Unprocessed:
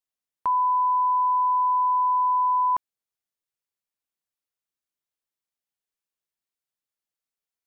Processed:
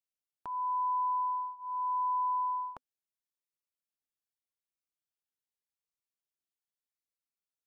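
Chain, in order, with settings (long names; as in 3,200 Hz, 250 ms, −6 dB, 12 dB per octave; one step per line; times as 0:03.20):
phaser whose notches keep moving one way rising 0.84 Hz
level −7.5 dB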